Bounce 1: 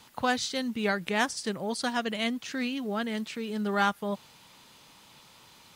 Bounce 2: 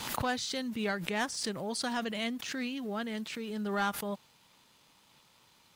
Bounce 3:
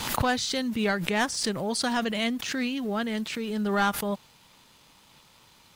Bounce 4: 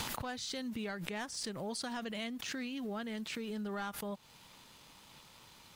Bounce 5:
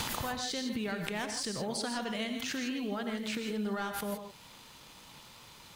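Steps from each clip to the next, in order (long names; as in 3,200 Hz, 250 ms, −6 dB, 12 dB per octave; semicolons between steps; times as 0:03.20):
leveller curve on the samples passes 1; background raised ahead of every attack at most 43 dB per second; level −8.5 dB
low-shelf EQ 63 Hz +9.5 dB; level +6.5 dB
downward compressor 10 to 1, threshold −36 dBFS, peak gain reduction 16 dB; level −1 dB
reverb whose tail is shaped and stops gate 180 ms rising, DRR 5 dB; level +3.5 dB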